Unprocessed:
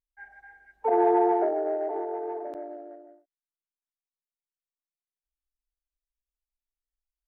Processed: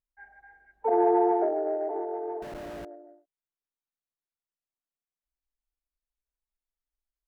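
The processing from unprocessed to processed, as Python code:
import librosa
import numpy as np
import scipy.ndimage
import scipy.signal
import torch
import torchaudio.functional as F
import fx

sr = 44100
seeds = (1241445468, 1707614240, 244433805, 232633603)

y = fx.schmitt(x, sr, flips_db=-48.0, at=(2.42, 2.85))
y = fx.high_shelf(y, sr, hz=2200.0, db=-11.5)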